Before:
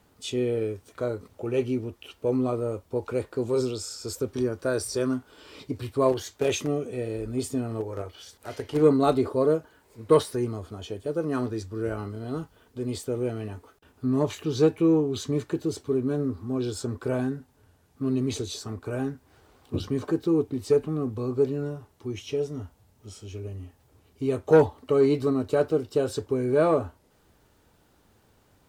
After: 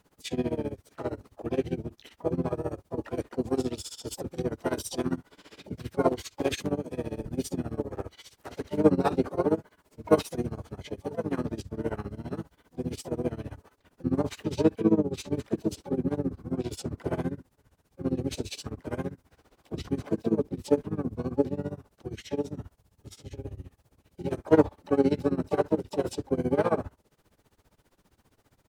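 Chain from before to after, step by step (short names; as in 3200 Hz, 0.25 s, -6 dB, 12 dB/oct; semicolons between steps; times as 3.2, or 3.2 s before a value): harmoniser -7 st -3 dB, +5 st -7 dB, +12 st -16 dB; tremolo 15 Hz, depth 92%; gain -2 dB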